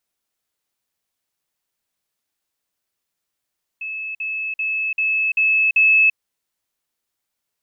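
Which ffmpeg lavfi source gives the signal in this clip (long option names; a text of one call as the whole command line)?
ffmpeg -f lavfi -i "aevalsrc='pow(10,(-25.5+3*floor(t/0.39))/20)*sin(2*PI*2600*t)*clip(min(mod(t,0.39),0.34-mod(t,0.39))/0.005,0,1)':duration=2.34:sample_rate=44100" out.wav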